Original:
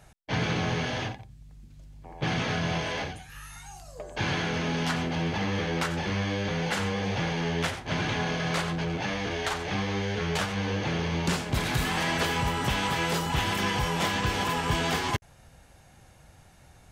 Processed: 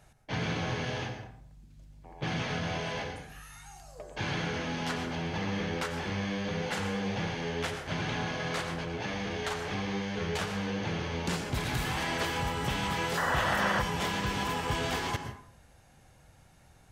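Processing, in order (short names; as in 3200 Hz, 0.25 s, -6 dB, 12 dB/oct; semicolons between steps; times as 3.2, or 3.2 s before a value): plate-style reverb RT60 0.6 s, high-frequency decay 0.55×, pre-delay 0.1 s, DRR 7.5 dB; painted sound noise, 13.17–13.82, 480–2000 Hz -25 dBFS; gain -5 dB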